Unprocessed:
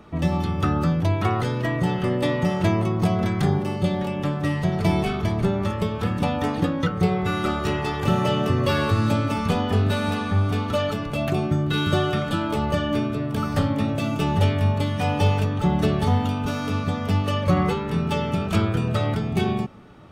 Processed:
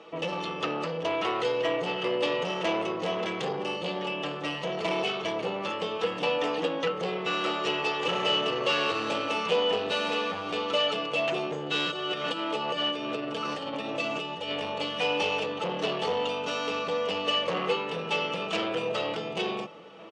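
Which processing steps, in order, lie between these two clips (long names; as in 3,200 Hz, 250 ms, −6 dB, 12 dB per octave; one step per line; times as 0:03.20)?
comb filter 6.1 ms, depth 50%
0:11.90–0:14.59: compressor whose output falls as the input rises −26 dBFS, ratio −1
soft clipping −20 dBFS, distortion −11 dB
loudspeaker in its box 450–7,100 Hz, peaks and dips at 480 Hz +9 dB, 1,500 Hz −6 dB, 2,900 Hz +9 dB
slap from a distant wall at 250 metres, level −18 dB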